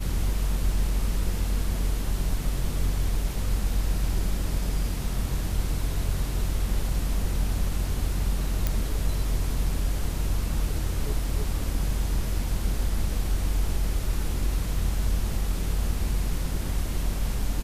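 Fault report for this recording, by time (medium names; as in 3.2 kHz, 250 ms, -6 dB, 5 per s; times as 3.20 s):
8.67 s: pop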